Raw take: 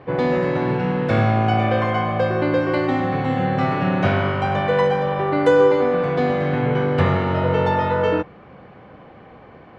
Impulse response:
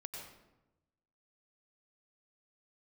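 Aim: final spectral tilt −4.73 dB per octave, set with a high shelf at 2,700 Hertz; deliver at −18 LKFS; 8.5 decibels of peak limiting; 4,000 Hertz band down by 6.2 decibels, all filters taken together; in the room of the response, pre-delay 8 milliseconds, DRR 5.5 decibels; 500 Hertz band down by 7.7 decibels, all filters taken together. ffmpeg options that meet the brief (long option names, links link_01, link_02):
-filter_complex "[0:a]equalizer=frequency=500:width_type=o:gain=-8.5,highshelf=frequency=2700:gain=-3.5,equalizer=frequency=4000:width_type=o:gain=-6,alimiter=limit=-16dB:level=0:latency=1,asplit=2[link_01][link_02];[1:a]atrim=start_sample=2205,adelay=8[link_03];[link_02][link_03]afir=irnorm=-1:irlink=0,volume=-3dB[link_04];[link_01][link_04]amix=inputs=2:normalize=0,volume=5.5dB"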